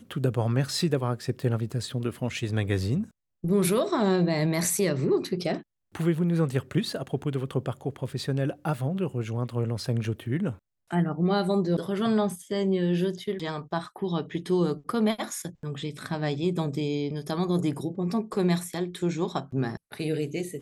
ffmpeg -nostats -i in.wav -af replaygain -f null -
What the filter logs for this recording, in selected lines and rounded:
track_gain = +8.2 dB
track_peak = 0.190